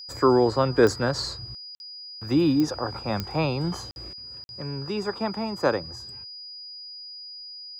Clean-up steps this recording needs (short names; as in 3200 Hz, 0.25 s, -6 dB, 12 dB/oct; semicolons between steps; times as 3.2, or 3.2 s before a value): de-click; notch 4900 Hz, Q 30; interpolate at 1.75/3.91/4.44, 51 ms